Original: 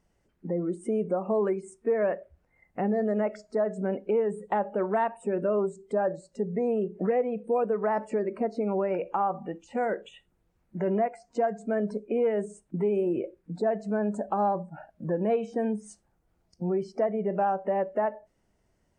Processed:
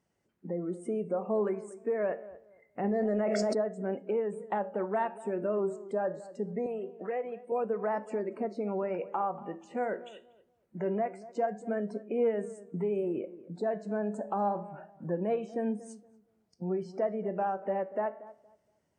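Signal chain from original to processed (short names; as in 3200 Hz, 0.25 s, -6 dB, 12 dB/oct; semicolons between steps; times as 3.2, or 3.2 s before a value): HPF 110 Hz; flange 0.25 Hz, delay 7.3 ms, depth 9.7 ms, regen +82%; 6.66–7.52 weighting filter A; tape echo 0.235 s, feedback 26%, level -15.5 dB, low-pass 1200 Hz; 2.84–3.58 fast leveller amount 100%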